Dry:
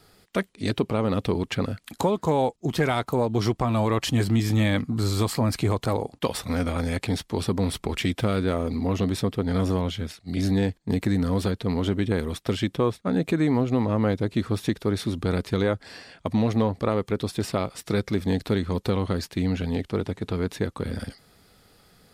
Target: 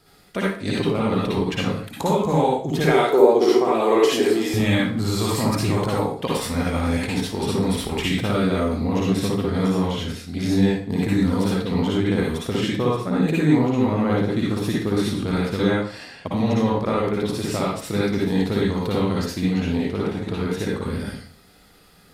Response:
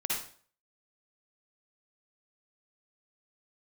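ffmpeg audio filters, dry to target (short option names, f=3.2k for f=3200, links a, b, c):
-filter_complex "[0:a]asettb=1/sr,asplit=3[a][b][c];[a]atrim=end=2.874[d];[b]atrim=start=2.87:end=4.54,asetpts=PTS-STARTPTS,afade=t=in:d=0.004:c=qsin,afade=t=out:st=1.666:d=0.004:c=qsin,highpass=f=390:t=q:w=4.2[e];[c]atrim=start=4.536[f];[d][e]acrossfade=d=0.004:c1=hsin:c2=qsin[g];[g][f]acrossfade=d=0.004:c1=qsin:c2=hsin[h];[1:a]atrim=start_sample=2205[i];[h][i]afir=irnorm=-1:irlink=0,volume=-1dB"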